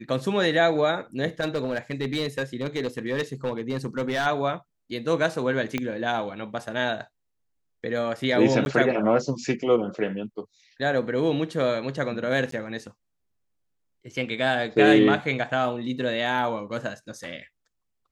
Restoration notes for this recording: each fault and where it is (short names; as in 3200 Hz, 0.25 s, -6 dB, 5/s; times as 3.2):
1.4–4.27 clipped -21 dBFS
5.78 pop -13 dBFS
8.65–8.66 gap
12.51–12.52 gap 13 ms